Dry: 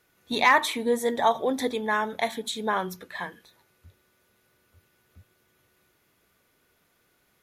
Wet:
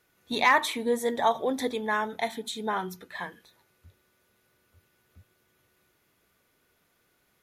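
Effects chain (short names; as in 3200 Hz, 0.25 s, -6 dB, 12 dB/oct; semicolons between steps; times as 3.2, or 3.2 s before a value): 2.07–3.11 notch comb 560 Hz; gain -2 dB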